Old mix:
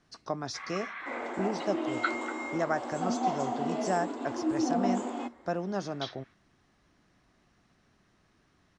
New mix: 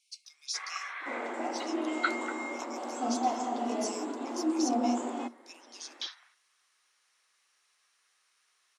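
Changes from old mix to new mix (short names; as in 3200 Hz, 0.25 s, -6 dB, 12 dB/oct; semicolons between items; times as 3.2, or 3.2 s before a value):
speech: add brick-wall FIR high-pass 2100 Hz; second sound: add high shelf 5000 Hz -8 dB; master: remove air absorption 87 m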